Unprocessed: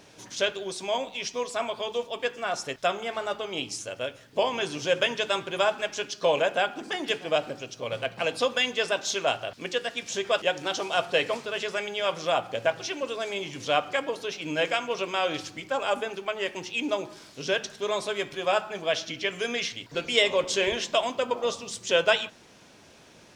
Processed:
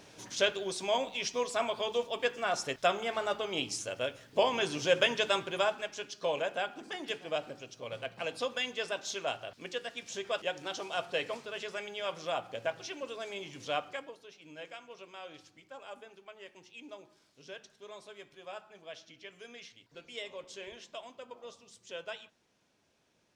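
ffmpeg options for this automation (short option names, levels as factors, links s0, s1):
-af "volume=0.794,afade=t=out:st=5.27:d=0.63:silence=0.446684,afade=t=out:st=13.76:d=0.42:silence=0.281838"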